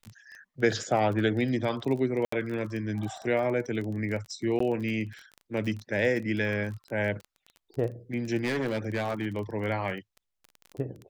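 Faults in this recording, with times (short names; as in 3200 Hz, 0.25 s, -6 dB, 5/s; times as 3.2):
crackle 23/s -34 dBFS
2.25–2.32 gap 74 ms
4.59–4.6 gap 14 ms
8.43–9.27 clipped -25 dBFS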